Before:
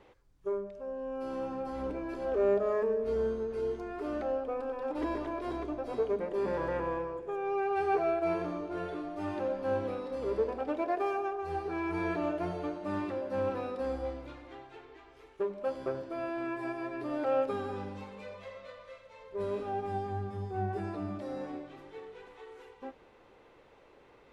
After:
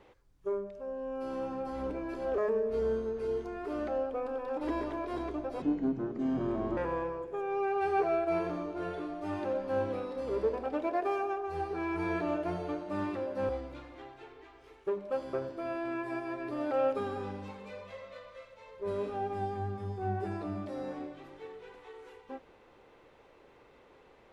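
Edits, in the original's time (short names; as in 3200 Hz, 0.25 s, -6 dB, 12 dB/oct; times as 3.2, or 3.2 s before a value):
2.38–2.72 cut
5.96–6.72 speed 66%
13.44–14.02 cut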